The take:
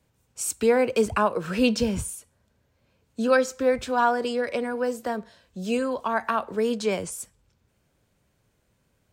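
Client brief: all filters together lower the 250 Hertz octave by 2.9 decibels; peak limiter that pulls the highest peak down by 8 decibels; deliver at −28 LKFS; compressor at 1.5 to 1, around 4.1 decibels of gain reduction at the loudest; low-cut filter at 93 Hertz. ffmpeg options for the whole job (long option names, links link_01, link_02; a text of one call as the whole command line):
ffmpeg -i in.wav -af "highpass=93,equalizer=frequency=250:width_type=o:gain=-3,acompressor=threshold=-28dB:ratio=1.5,volume=3.5dB,alimiter=limit=-18dB:level=0:latency=1" out.wav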